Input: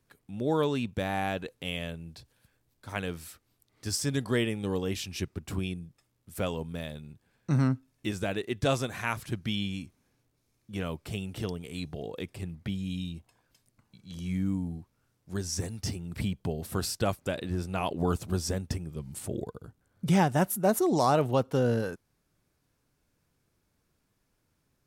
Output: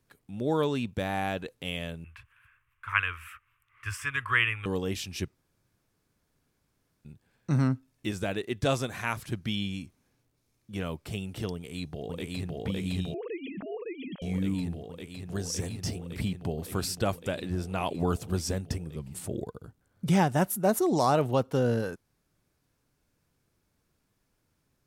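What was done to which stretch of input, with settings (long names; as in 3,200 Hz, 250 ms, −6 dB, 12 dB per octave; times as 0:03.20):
0:02.04–0:04.66: drawn EQ curve 110 Hz 0 dB, 180 Hz −25 dB, 260 Hz −20 dB, 370 Hz −15 dB, 750 Hz −15 dB, 1,100 Hz +14 dB, 1,900 Hz +11 dB, 2,700 Hz +12 dB, 4,200 Hz −16 dB, 9,500 Hz −8 dB
0:05.35–0:07.05: fill with room tone
0:11.53–0:12.58: delay throw 560 ms, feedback 85%, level 0 dB
0:13.14–0:14.22: three sine waves on the formant tracks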